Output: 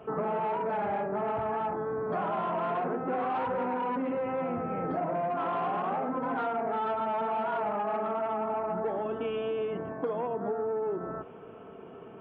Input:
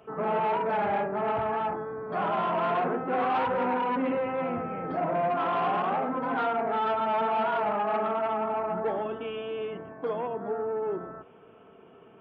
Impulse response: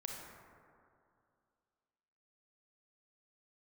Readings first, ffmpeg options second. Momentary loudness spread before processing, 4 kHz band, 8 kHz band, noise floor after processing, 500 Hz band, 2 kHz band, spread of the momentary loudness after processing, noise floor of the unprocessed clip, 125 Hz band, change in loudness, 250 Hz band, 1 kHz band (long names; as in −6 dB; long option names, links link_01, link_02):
7 LU, −7.0 dB, can't be measured, −47 dBFS, −2.0 dB, −5.5 dB, 4 LU, −53 dBFS, −1.0 dB, −3.0 dB, −1.5 dB, −3.5 dB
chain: -af "highshelf=frequency=2300:gain=-9.5,acompressor=threshold=-36dB:ratio=6,volume=7dB"